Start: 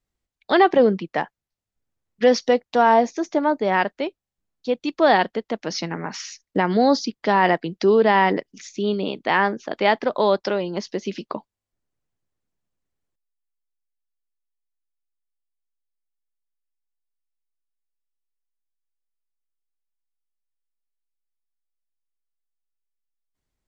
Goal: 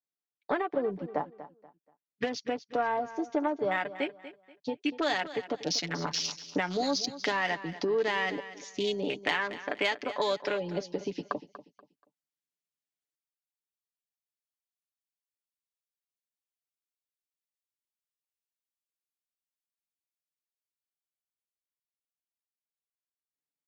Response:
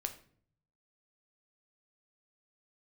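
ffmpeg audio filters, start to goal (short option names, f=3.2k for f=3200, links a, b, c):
-filter_complex "[0:a]acrossover=split=140|1900[a][b][c];[a]acrusher=bits=5:dc=4:mix=0:aa=0.000001[d];[c]dynaudnorm=f=570:g=11:m=15dB[e];[d][b][e]amix=inputs=3:normalize=0,afwtdn=0.0501,acompressor=threshold=-26dB:ratio=5,aeval=exprs='0.335*(cos(1*acos(clip(val(0)/0.335,-1,1)))-cos(1*PI/2))+0.0299*(cos(3*acos(clip(val(0)/0.335,-1,1)))-cos(3*PI/2))':c=same,aecho=1:1:6.9:0.55,asplit=2[f][g];[g]aecho=0:1:240|480|720:0.188|0.0546|0.0158[h];[f][h]amix=inputs=2:normalize=0"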